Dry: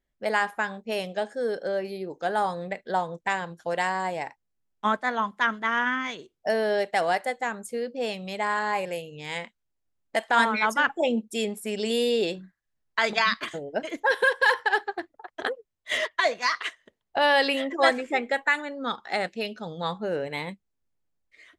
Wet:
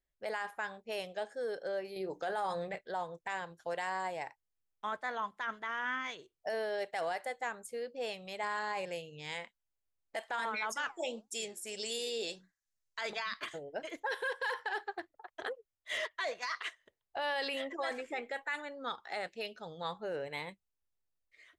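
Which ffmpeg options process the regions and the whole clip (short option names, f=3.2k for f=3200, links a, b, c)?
-filter_complex "[0:a]asettb=1/sr,asplit=3[a][b][c];[a]atrim=end=1.964[d];[b]atrim=start=1.96:end=2.79,asetpts=PTS-STARTPTS,afade=t=in:d=0.004:c=qsin,afade=t=out:st=0.826:d=0.004:c=qsin,acontrast=67,bandreject=f=60:t=h:w=6,bandreject=f=120:t=h:w=6,bandreject=f=180:t=h:w=6,bandreject=f=240:t=h:w=6,bandreject=f=300:t=h:w=6,asplit=2[e][f];[f]adelay=16,volume=-13dB[g];[e][g]amix=inputs=2:normalize=0,atrim=end_sample=36603[h];[c]atrim=start=2.786[i];[d][h]acrossfade=d=0.004:c1=hsin:c2=qsin[j];[j][i]acrossfade=d=0.004:c1=qsin:c2=hsin,asettb=1/sr,asplit=3[k][l][m];[k]atrim=end=8.434[n];[l]atrim=start=8.43:end=9.34,asetpts=PTS-STARTPTS,afade=t=in:d=0.004:c=qsin,afade=t=out:st=0.906:d=0.004:c=qsin,highpass=150,lowpass=5.5k,bass=f=250:g=8,treble=f=4k:g=9[o];[m]atrim=start=9.336[p];[n][o]acrossfade=d=0.004:c1=hsin:c2=qsin[q];[q][p]acrossfade=d=0.004:c1=qsin:c2=hsin,asettb=1/sr,asplit=3[r][s][t];[r]atrim=end=10.724[u];[s]atrim=start=10.72:end=13.01,asetpts=PTS-STARTPTS,afade=t=in:d=0.004:c=qsin,afade=t=out:st=2.286:d=0.004:c=qsin,equalizer=f=6.5k:t=o:w=1.4:g=14.5,flanger=delay=3.4:depth=5.4:regen=83:speed=1.7:shape=sinusoidal[v];[t]atrim=start=13.006[w];[u][v]acrossfade=d=0.004:c1=hsin:c2=qsin[x];[x][w]acrossfade=d=0.004:c1=qsin:c2=hsin,alimiter=limit=-19.5dB:level=0:latency=1:release=12,equalizer=f=220:w=1.5:g=-9.5,volume=-7.5dB"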